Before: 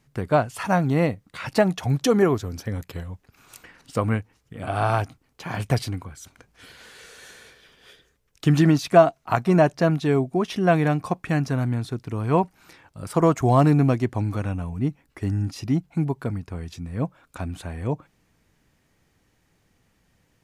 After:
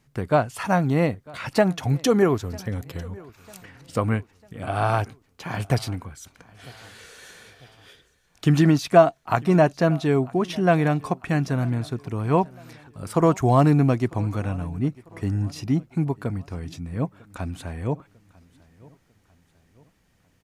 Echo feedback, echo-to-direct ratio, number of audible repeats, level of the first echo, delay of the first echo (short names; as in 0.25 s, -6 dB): 46%, -22.5 dB, 2, -23.5 dB, 0.948 s